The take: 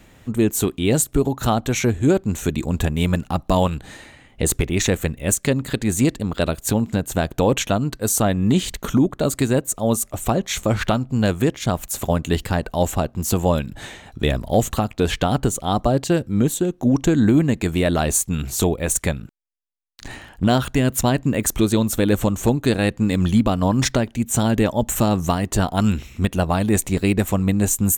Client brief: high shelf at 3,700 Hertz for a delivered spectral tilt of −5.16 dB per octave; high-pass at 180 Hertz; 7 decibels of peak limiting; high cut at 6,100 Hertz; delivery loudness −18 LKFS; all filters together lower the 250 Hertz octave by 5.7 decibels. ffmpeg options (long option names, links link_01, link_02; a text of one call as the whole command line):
ffmpeg -i in.wav -af "highpass=180,lowpass=6100,equalizer=frequency=250:width_type=o:gain=-5.5,highshelf=frequency=3700:gain=-6,volume=8.5dB,alimiter=limit=-3.5dB:level=0:latency=1" out.wav